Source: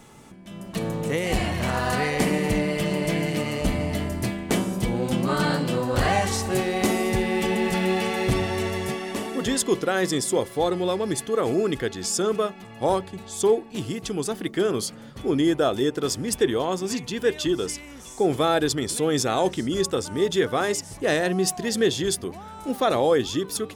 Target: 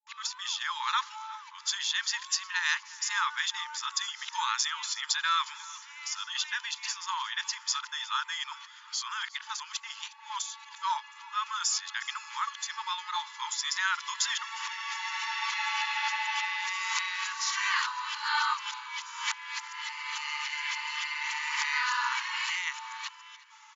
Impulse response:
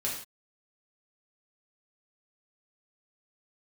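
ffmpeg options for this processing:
-af "areverse,aecho=1:1:359|718|1077:0.0944|0.0425|0.0191,afftfilt=real='re*between(b*sr/4096,860,7300)':imag='im*between(b*sr/4096,860,7300)':win_size=4096:overlap=0.75"

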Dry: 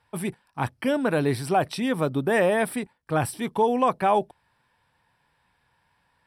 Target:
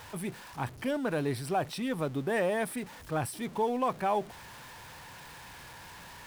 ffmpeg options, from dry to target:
ffmpeg -i in.wav -af "aeval=exprs='val(0)+0.5*0.02*sgn(val(0))':channel_layout=same,volume=-8.5dB" out.wav

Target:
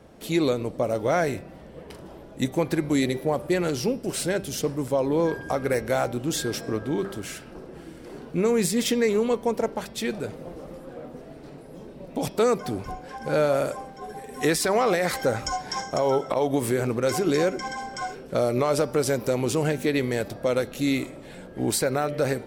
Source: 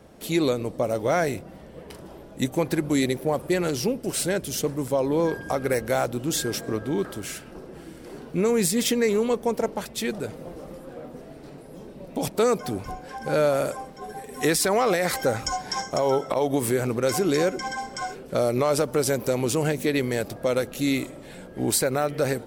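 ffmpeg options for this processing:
ffmpeg -i in.wav -af "highshelf=frequency=7600:gain=-6,bandreject=frequency=196:width_type=h:width=4,bandreject=frequency=392:width_type=h:width=4,bandreject=frequency=588:width_type=h:width=4,bandreject=frequency=784:width_type=h:width=4,bandreject=frequency=980:width_type=h:width=4,bandreject=frequency=1176:width_type=h:width=4,bandreject=frequency=1372:width_type=h:width=4,bandreject=frequency=1568:width_type=h:width=4,bandreject=frequency=1764:width_type=h:width=4,bandreject=frequency=1960:width_type=h:width=4,bandreject=frequency=2156:width_type=h:width=4,bandreject=frequency=2352:width_type=h:width=4,bandreject=frequency=2548:width_type=h:width=4,bandreject=frequency=2744:width_type=h:width=4,bandreject=frequency=2940:width_type=h:width=4,bandreject=frequency=3136:width_type=h:width=4,bandreject=frequency=3332:width_type=h:width=4,bandreject=frequency=3528:width_type=h:width=4,bandreject=frequency=3724:width_type=h:width=4,bandreject=frequency=3920:width_type=h:width=4,bandreject=frequency=4116:width_type=h:width=4,bandreject=frequency=4312:width_type=h:width=4,bandreject=frequency=4508:width_type=h:width=4,bandreject=frequency=4704:width_type=h:width=4,bandreject=frequency=4900:width_type=h:width=4,bandreject=frequency=5096:width_type=h:width=4,bandreject=frequency=5292:width_type=h:width=4,bandreject=frequency=5488:width_type=h:width=4,bandreject=frequency=5684:width_type=h:width=4" out.wav

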